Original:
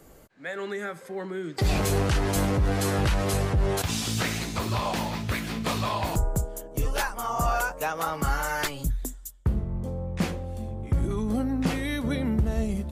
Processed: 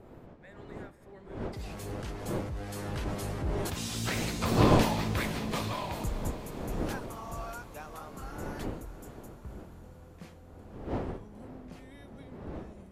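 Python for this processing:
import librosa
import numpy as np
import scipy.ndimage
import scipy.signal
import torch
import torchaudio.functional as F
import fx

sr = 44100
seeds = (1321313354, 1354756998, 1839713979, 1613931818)

y = fx.dmg_wind(x, sr, seeds[0], corner_hz=420.0, level_db=-24.0)
y = fx.doppler_pass(y, sr, speed_mps=11, closest_m=4.9, pass_at_s=4.77)
y = fx.echo_diffused(y, sr, ms=526, feedback_pct=67, wet_db=-15.5)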